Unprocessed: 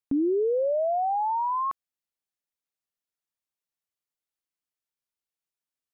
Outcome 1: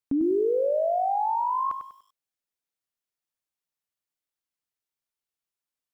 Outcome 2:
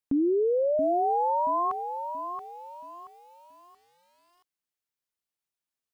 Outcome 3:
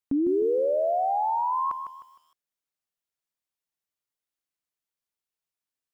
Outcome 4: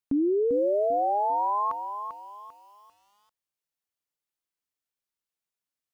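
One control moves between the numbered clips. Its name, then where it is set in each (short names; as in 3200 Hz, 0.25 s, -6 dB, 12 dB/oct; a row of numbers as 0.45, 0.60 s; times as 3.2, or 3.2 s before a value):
lo-fi delay, time: 98, 678, 154, 395 ms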